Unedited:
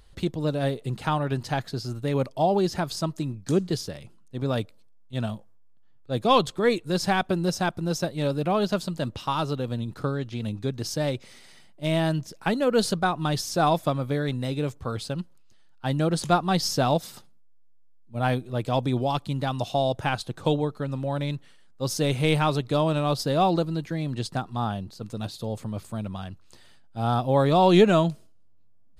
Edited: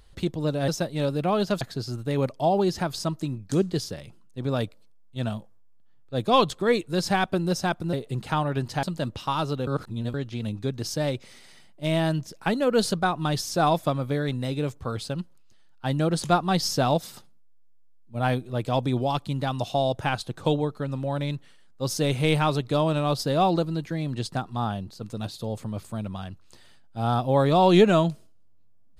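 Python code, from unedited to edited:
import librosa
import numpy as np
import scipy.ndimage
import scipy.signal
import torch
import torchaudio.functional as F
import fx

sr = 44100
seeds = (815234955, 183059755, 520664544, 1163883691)

y = fx.edit(x, sr, fx.swap(start_s=0.68, length_s=0.9, other_s=7.9, other_length_s=0.93),
    fx.reverse_span(start_s=9.67, length_s=0.47), tone=tone)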